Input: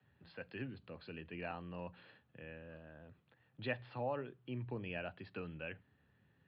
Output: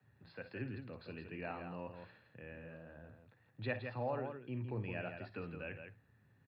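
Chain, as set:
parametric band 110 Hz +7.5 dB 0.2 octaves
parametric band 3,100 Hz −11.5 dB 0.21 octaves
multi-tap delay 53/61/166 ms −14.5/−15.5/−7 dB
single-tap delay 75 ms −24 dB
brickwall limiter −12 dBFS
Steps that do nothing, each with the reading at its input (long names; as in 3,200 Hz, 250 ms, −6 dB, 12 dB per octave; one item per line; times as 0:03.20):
brickwall limiter −12 dBFS: peak of its input −23.5 dBFS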